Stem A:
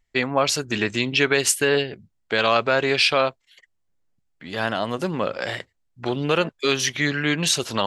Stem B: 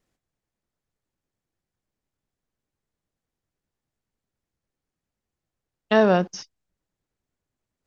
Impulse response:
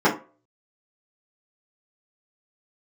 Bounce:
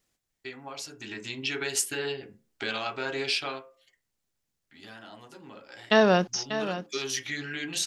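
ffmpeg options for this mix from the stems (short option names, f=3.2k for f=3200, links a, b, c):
-filter_complex "[0:a]acompressor=threshold=-33dB:ratio=2,adelay=300,volume=2.5dB,afade=t=in:st=0.97:d=0.61:silence=0.354813,afade=t=out:st=3.45:d=0.22:silence=0.266073,afade=t=in:st=6.3:d=0.73:silence=0.316228,asplit=2[a][b];[b]volume=-21dB[c];[1:a]volume=-3.5dB,asplit=2[d][e];[e]volume=-11dB[f];[2:a]atrim=start_sample=2205[g];[c][g]afir=irnorm=-1:irlink=0[h];[f]aecho=0:1:590:1[i];[a][d][h][i]amix=inputs=4:normalize=0,highshelf=f=2.2k:g=11"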